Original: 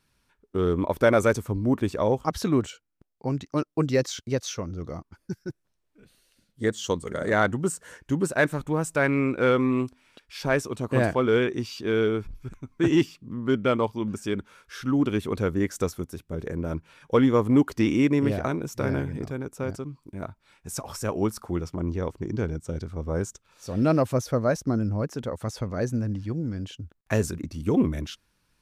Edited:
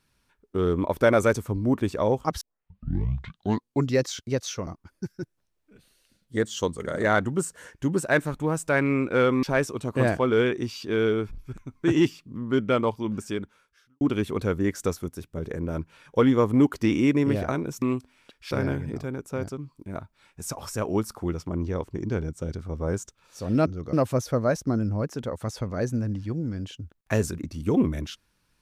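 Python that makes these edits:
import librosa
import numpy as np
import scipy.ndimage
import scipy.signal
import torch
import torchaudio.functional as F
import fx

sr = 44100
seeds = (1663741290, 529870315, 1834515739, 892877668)

y = fx.edit(x, sr, fx.tape_start(start_s=2.41, length_s=1.55),
    fx.move(start_s=4.67, length_s=0.27, to_s=23.93),
    fx.move(start_s=9.7, length_s=0.69, to_s=18.78),
    fx.fade_out_span(start_s=14.23, length_s=0.74, curve='qua'), tone=tone)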